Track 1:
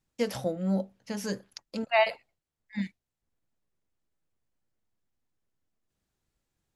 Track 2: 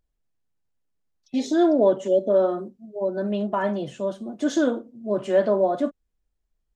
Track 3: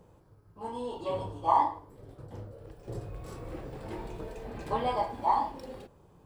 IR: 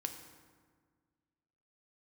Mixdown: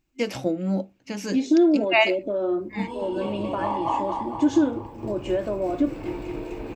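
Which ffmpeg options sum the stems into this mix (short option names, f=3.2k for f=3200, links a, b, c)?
-filter_complex "[0:a]volume=2.5dB[a];[1:a]volume=-2dB[b];[2:a]adelay=2150,volume=2dB,asplit=2[c][d];[d]volume=-4dB[e];[b][c]amix=inputs=2:normalize=0,acompressor=threshold=-26dB:ratio=2.5,volume=0dB[f];[e]aecho=0:1:227|454|681|908|1135|1362|1589|1816|2043:1|0.58|0.336|0.195|0.113|0.0656|0.0381|0.0221|0.0128[g];[a][f][g]amix=inputs=3:normalize=0,superequalizer=6b=3.16:12b=2.24:16b=0.355"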